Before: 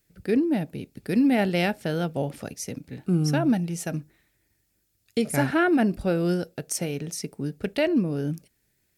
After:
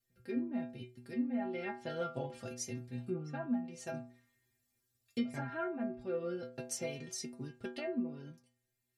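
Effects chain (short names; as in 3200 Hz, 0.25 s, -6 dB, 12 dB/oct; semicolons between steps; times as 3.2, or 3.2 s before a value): treble ducked by the level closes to 1500 Hz, closed at -18 dBFS; metallic resonator 120 Hz, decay 0.47 s, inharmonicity 0.008; vocal rider within 5 dB 0.5 s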